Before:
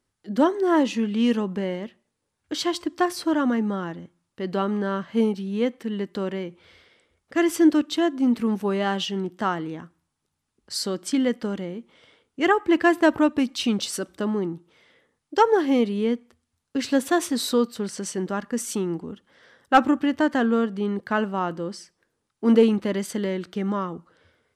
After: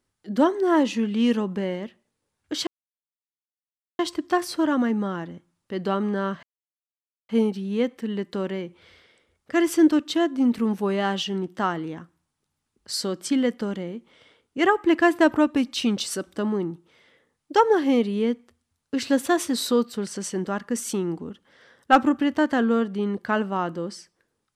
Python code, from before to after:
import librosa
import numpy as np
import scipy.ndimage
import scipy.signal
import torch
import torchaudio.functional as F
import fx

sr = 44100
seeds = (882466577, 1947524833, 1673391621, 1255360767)

y = fx.edit(x, sr, fx.insert_silence(at_s=2.67, length_s=1.32),
    fx.insert_silence(at_s=5.11, length_s=0.86), tone=tone)